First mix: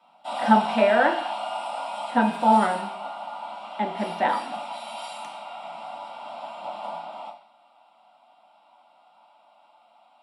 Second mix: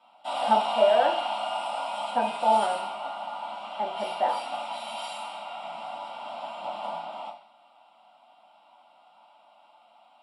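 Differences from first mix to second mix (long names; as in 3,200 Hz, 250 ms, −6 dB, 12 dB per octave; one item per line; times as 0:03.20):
speech: add resonant band-pass 660 Hz, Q 2
master: add parametric band 3,000 Hz +4.5 dB 0.21 octaves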